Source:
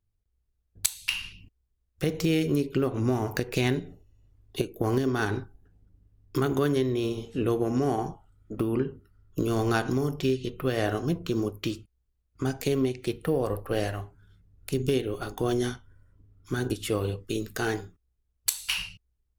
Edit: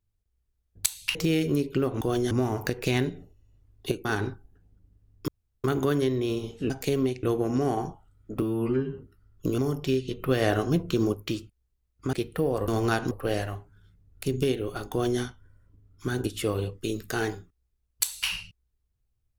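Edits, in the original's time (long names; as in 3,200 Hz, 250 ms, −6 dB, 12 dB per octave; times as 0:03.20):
0:01.15–0:02.15: remove
0:04.75–0:05.15: remove
0:06.38: splice in room tone 0.36 s
0:08.63–0:08.91: time-stretch 2×
0:09.51–0:09.94: move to 0:13.57
0:10.55–0:11.50: clip gain +3 dB
0:12.49–0:13.02: move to 0:07.44
0:15.37–0:15.67: duplicate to 0:03.01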